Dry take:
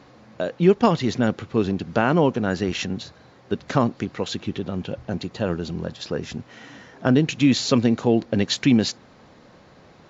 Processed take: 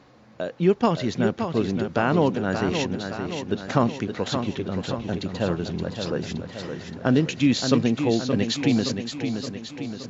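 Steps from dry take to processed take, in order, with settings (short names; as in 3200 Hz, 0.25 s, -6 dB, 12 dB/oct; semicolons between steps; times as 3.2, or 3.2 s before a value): in parallel at -1 dB: vocal rider within 4 dB 2 s; on the sum: warbling echo 0.571 s, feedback 57%, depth 50 cents, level -7 dB; gain -8 dB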